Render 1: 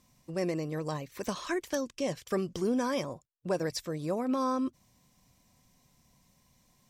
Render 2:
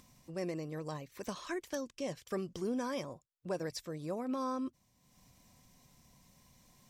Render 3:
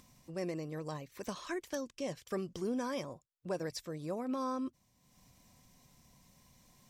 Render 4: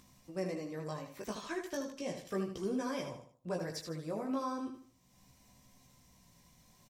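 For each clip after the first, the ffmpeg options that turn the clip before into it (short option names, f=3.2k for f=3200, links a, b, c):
-af "acompressor=mode=upward:threshold=-47dB:ratio=2.5,volume=-6.5dB"
-af anull
-filter_complex "[0:a]flanger=delay=15:depth=3.7:speed=0.36,asplit=2[a][b];[b]aecho=0:1:77|154|231|308:0.422|0.148|0.0517|0.0181[c];[a][c]amix=inputs=2:normalize=0,volume=2.5dB"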